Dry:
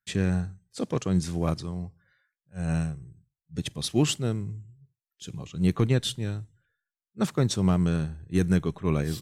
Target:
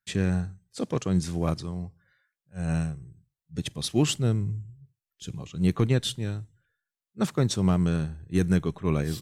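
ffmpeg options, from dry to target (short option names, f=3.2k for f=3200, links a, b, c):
-filter_complex "[0:a]asettb=1/sr,asplit=3[a][b][c];[a]atrim=end=4.144[d];[b]atrim=start=4.14:end=5.32,asetpts=PTS-STARTPTS,afade=t=in:d=0.004:c=qsin,afade=t=out:st=1.176:d=0.004:c=qsin,lowshelf=f=110:g=10.5[e];[c]atrim=start=5.316[f];[d][e]acrossfade=d=0.004:c1=hsin:c2=qsin[g];[g][f]acrossfade=d=0.004:c1=qsin:c2=hsin"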